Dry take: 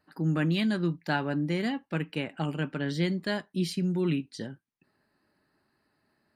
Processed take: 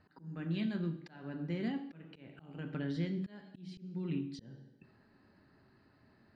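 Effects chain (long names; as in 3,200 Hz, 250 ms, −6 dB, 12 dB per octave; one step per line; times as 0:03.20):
downward compressor 3 to 1, threshold −47 dBFS, peak gain reduction 18 dB
on a send at −7 dB: convolution reverb RT60 0.70 s, pre-delay 3 ms
on the sum: volume swells 364 ms
low-pass filter 4,500 Hz 12 dB per octave
low-shelf EQ 230 Hz +9 dB
level +3 dB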